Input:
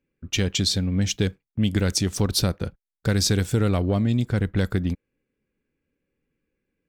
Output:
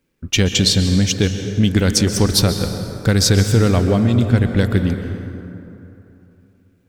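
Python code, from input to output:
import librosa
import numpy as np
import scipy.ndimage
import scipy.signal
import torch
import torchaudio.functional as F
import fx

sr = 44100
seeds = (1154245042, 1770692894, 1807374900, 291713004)

p1 = fx.rider(x, sr, range_db=10, speed_s=2.0)
p2 = x + (p1 * 10.0 ** (3.0 / 20.0))
p3 = fx.quant_dither(p2, sr, seeds[0], bits=12, dither='none')
p4 = fx.rev_plate(p3, sr, seeds[1], rt60_s=3.0, hf_ratio=0.5, predelay_ms=115, drr_db=7.0)
y = p4 * 10.0 ** (-1.5 / 20.0)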